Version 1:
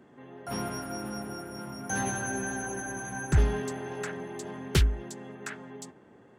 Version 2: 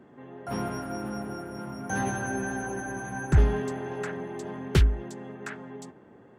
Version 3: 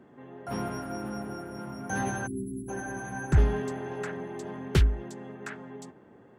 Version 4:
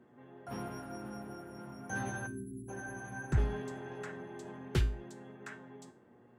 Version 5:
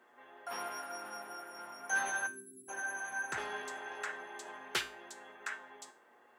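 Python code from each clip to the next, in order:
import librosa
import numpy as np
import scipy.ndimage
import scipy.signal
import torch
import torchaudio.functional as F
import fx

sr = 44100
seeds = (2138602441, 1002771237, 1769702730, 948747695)

y1 = fx.high_shelf(x, sr, hz=3000.0, db=-9.5)
y1 = y1 * librosa.db_to_amplitude(3.0)
y2 = fx.spec_erase(y1, sr, start_s=2.27, length_s=0.42, low_hz=390.0, high_hz=6700.0)
y2 = y2 * librosa.db_to_amplitude(-1.5)
y3 = fx.comb_fb(y2, sr, f0_hz=120.0, decay_s=0.35, harmonics='all', damping=0.0, mix_pct=70)
y4 = scipy.signal.sosfilt(scipy.signal.butter(2, 900.0, 'highpass', fs=sr, output='sos'), y3)
y4 = y4 * librosa.db_to_amplitude(8.0)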